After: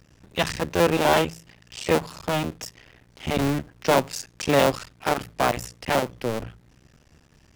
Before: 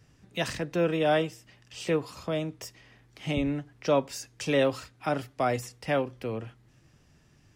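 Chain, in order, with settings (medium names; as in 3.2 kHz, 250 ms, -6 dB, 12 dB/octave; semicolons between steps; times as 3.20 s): cycle switcher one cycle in 2, muted; de-hum 55.01 Hz, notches 3; trim +7.5 dB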